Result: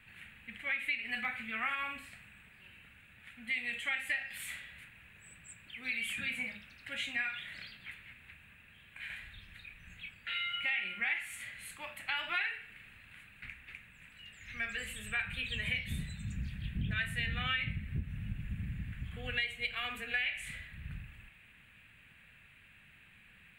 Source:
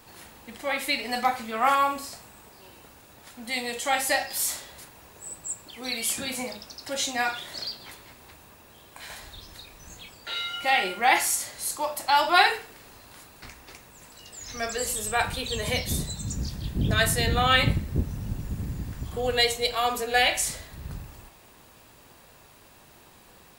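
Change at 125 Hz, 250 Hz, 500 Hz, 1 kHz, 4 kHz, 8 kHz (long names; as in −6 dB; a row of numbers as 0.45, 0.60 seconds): −10.0, −12.5, −23.5, −20.5, −12.0, −22.0 decibels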